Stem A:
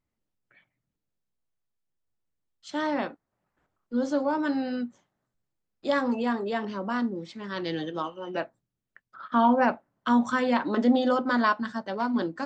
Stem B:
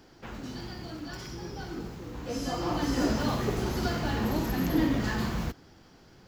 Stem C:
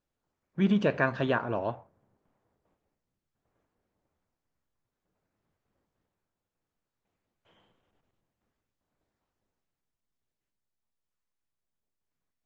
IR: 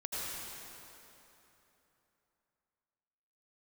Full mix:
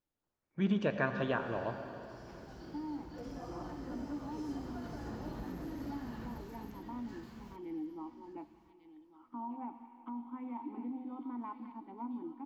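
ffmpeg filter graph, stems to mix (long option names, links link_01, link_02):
-filter_complex "[0:a]asplit=3[link_01][link_02][link_03];[link_01]bandpass=frequency=300:width_type=q:width=8,volume=0dB[link_04];[link_02]bandpass=frequency=870:width_type=q:width=8,volume=-6dB[link_05];[link_03]bandpass=frequency=2240:width_type=q:width=8,volume=-9dB[link_06];[link_04][link_05][link_06]amix=inputs=3:normalize=0,volume=-2.5dB,asplit=3[link_07][link_08][link_09];[link_08]volume=-20dB[link_10];[link_09]volume=-18dB[link_11];[1:a]acompressor=threshold=-33dB:ratio=3,adelay=900,volume=-7.5dB,asplit=3[link_12][link_13][link_14];[link_13]volume=-14.5dB[link_15];[link_14]volume=-10.5dB[link_16];[2:a]volume=-8dB,asplit=3[link_17][link_18][link_19];[link_18]volume=-9.5dB[link_20];[link_19]apad=whole_len=316597[link_21];[link_12][link_21]sidechaincompress=threshold=-49dB:ratio=8:attack=16:release=1460[link_22];[link_07][link_22]amix=inputs=2:normalize=0,lowpass=1600,alimiter=level_in=11.5dB:limit=-24dB:level=0:latency=1:release=362,volume=-11.5dB,volume=0dB[link_23];[3:a]atrim=start_sample=2205[link_24];[link_10][link_15][link_20]amix=inputs=3:normalize=0[link_25];[link_25][link_24]afir=irnorm=-1:irlink=0[link_26];[link_11][link_16]amix=inputs=2:normalize=0,aecho=0:1:1147|2294|3441:1|0.15|0.0225[link_27];[link_17][link_23][link_26][link_27]amix=inputs=4:normalize=0"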